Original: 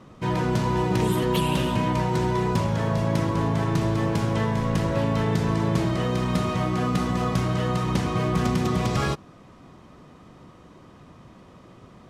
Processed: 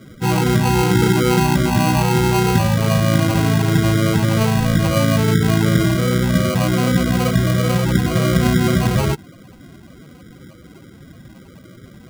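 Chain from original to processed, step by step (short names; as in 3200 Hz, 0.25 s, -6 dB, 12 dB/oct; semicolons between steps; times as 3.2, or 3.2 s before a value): loudest bins only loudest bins 16; sample-and-hold 25×; gain +8.5 dB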